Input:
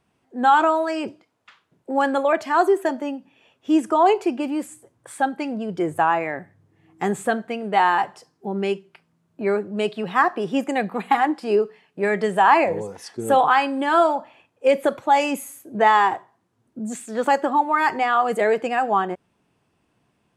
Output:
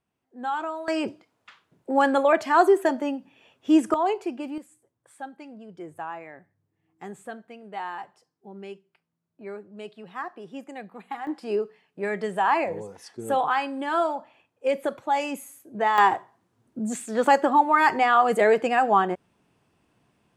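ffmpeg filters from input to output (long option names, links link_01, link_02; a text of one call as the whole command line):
ffmpeg -i in.wav -af "asetnsamples=nb_out_samples=441:pad=0,asendcmd='0.88 volume volume 0dB;3.94 volume volume -8dB;4.58 volume volume -16dB;11.27 volume volume -7dB;15.98 volume volume 0.5dB',volume=-13dB" out.wav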